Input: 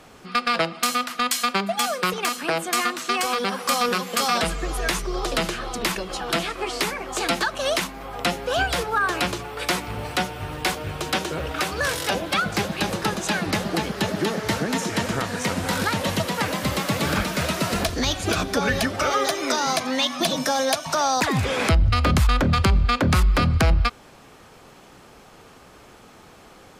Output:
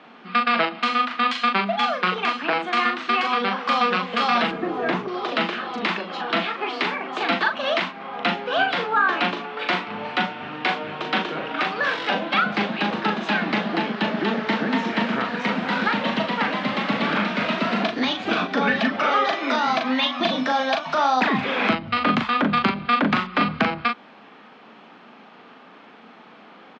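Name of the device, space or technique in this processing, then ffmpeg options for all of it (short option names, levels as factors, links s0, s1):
kitchen radio: -filter_complex "[0:a]highpass=210,highpass=190,equalizer=f=220:t=q:w=4:g=8,equalizer=f=370:t=q:w=4:g=-5,equalizer=f=530:t=q:w=4:g=-5,lowpass=f=3500:w=0.5412,lowpass=f=3500:w=1.3066,asplit=2[s0][s1];[s1]adelay=39,volume=0.562[s2];[s0][s2]amix=inputs=2:normalize=0,asettb=1/sr,asplit=3[s3][s4][s5];[s3]atrim=end=4.514[s6];[s4]atrim=start=4.51:end=5.08,asetpts=PTS-STARTPTS,afade=t=in:d=0.004:c=qsin,afade=t=out:st=0.566:d=0.004:c=qsin,tiltshelf=f=1100:g=9[s7];[s5]atrim=start=5.076[s8];[s6][s7]acrossfade=d=0.004:c1=hsin:c2=qsin[s9];[s9][s8]acrossfade=d=0.004:c1=qsin:c2=hsin,volume=1.26"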